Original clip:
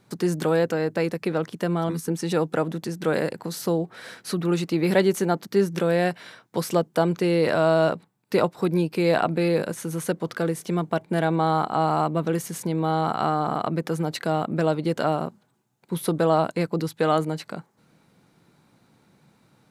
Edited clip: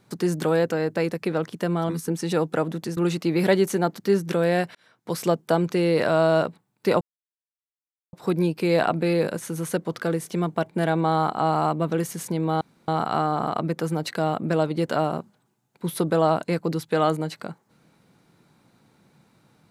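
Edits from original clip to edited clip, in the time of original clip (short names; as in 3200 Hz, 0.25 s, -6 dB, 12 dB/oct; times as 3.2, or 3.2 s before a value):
2.97–4.44 cut
6.22–6.69 fade in
8.48 insert silence 1.12 s
12.96 insert room tone 0.27 s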